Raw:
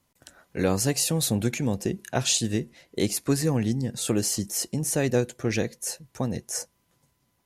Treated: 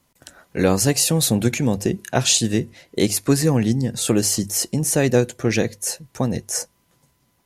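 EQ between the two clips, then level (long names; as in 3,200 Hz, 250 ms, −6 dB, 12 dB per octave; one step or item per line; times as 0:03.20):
mains-hum notches 50/100 Hz
+6.5 dB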